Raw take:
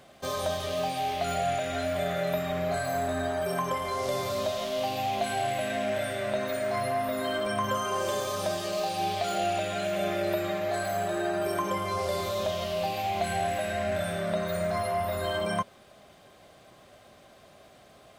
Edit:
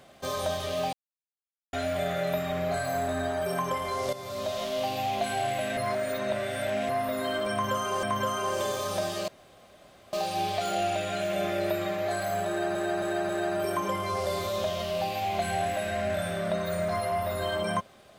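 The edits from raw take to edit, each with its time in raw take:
0:00.93–0:01.73: silence
0:04.13–0:04.60: fade in, from −12.5 dB
0:05.77–0:06.89: reverse
0:07.51–0:08.03: repeat, 2 plays
0:08.76: splice in room tone 0.85 s
0:11.11–0:11.38: repeat, 4 plays

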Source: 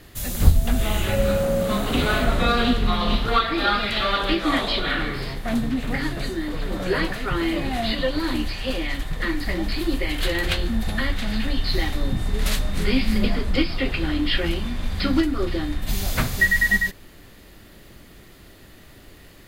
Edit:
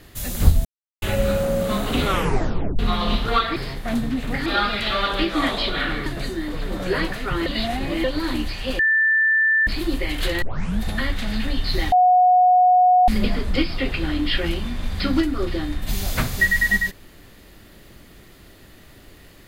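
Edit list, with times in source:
0:00.65–0:01.02: silence
0:02.04: tape stop 0.75 s
0:05.16–0:06.06: move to 0:03.56
0:07.46–0:08.04: reverse
0:08.79–0:09.67: beep over 1,770 Hz −14.5 dBFS
0:10.42: tape start 0.37 s
0:11.92–0:13.08: beep over 729 Hz −11 dBFS

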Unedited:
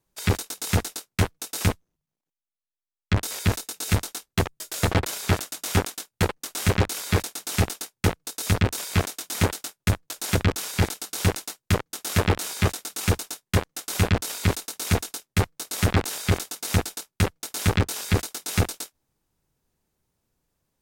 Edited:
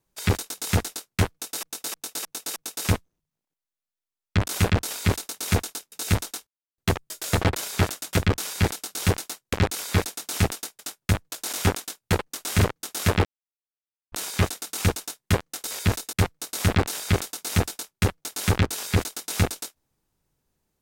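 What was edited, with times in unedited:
0:01.32–0:01.63: repeat, 5 plays
0:03.24–0:03.73: swap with 0:13.87–0:15.31
0:04.28: splice in silence 0.31 s
0:05.63–0:06.71: swap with 0:10.31–0:11.71
0:07.97–0:09.57: remove
0:12.35: splice in silence 0.87 s

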